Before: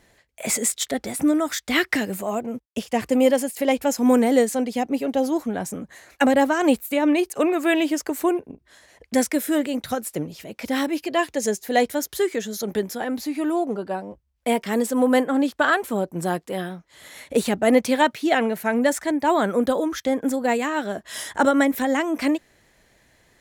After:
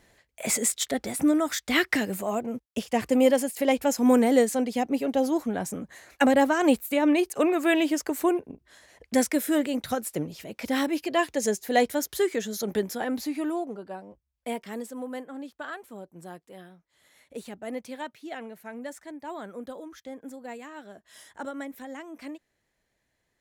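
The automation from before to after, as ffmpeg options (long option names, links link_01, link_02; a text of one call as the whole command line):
ffmpeg -i in.wav -af "volume=-2.5dB,afade=type=out:start_time=13.22:duration=0.51:silence=0.398107,afade=type=out:start_time=14.48:duration=0.61:silence=0.421697" out.wav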